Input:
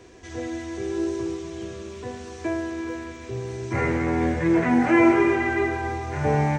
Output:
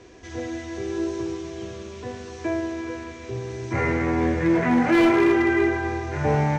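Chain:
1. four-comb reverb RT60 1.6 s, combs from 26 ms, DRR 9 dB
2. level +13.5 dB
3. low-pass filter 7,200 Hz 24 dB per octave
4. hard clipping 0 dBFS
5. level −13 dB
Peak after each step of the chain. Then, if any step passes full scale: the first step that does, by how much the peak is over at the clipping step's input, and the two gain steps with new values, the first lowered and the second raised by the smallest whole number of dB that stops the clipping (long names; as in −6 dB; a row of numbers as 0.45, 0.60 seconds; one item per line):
−6.0, +7.5, +7.5, 0.0, −13.0 dBFS
step 2, 7.5 dB
step 2 +5.5 dB, step 5 −5 dB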